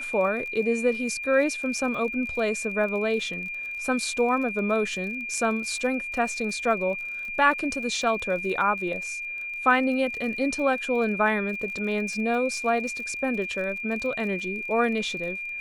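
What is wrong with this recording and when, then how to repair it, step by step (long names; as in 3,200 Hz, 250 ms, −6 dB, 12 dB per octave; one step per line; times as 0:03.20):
surface crackle 44 per second −35 dBFS
whistle 2,400 Hz −31 dBFS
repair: click removal
notch filter 2,400 Hz, Q 30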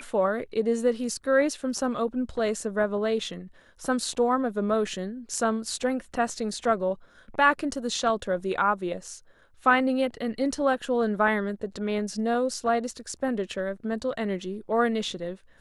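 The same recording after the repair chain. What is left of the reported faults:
none of them is left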